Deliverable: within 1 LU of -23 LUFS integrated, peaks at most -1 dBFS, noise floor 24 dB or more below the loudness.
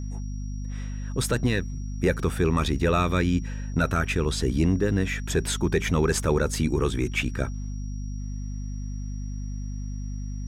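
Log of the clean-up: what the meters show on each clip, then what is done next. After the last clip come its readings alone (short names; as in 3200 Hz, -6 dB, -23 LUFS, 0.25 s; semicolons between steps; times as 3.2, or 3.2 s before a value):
hum 50 Hz; harmonics up to 250 Hz; hum level -30 dBFS; steady tone 5700 Hz; tone level -52 dBFS; loudness -27.0 LUFS; peak -12.0 dBFS; loudness target -23.0 LUFS
-> de-hum 50 Hz, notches 5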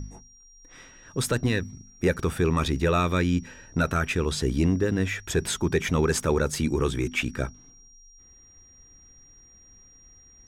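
hum none; steady tone 5700 Hz; tone level -52 dBFS
-> notch 5700 Hz, Q 30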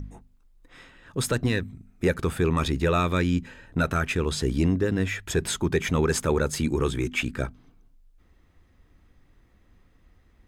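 steady tone none; loudness -26.0 LUFS; peak -13.0 dBFS; loudness target -23.0 LUFS
-> gain +3 dB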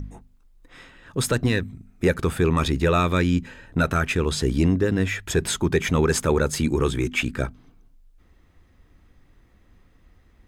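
loudness -23.0 LUFS; peak -10.0 dBFS; noise floor -58 dBFS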